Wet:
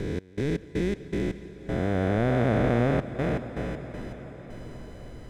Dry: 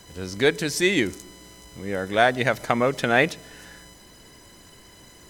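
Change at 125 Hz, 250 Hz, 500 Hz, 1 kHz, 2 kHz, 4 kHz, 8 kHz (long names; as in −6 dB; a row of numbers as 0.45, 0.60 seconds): +6.0 dB, +0.5 dB, −4.0 dB, −8.0 dB, −12.0 dB, −15.0 dB, below −15 dB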